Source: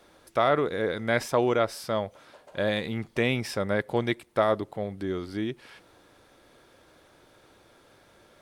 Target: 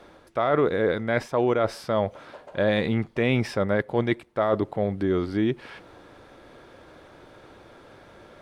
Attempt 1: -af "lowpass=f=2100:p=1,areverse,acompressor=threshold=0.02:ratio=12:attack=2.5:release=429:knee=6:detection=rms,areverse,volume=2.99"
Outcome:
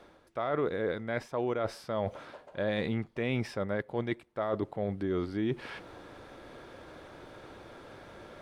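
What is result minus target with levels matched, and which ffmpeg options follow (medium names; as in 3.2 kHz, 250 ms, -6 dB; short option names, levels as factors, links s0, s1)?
compression: peak gain reduction +9 dB
-af "lowpass=f=2100:p=1,areverse,acompressor=threshold=0.0631:ratio=12:attack=2.5:release=429:knee=6:detection=rms,areverse,volume=2.99"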